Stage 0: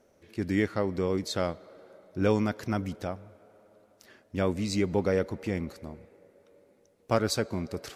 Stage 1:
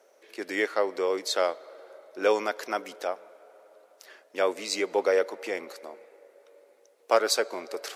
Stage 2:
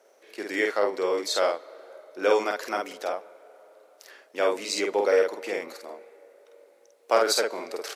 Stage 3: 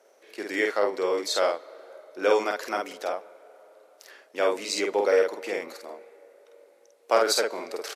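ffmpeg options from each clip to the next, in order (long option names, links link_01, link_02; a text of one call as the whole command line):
ffmpeg -i in.wav -af "highpass=frequency=430:width=0.5412,highpass=frequency=430:width=1.3066,volume=5.5dB" out.wav
ffmpeg -i in.wav -filter_complex "[0:a]asplit=2[link_01][link_02];[link_02]adelay=49,volume=-3dB[link_03];[link_01][link_03]amix=inputs=2:normalize=0" out.wav
ffmpeg -i in.wav -af "aresample=32000,aresample=44100" out.wav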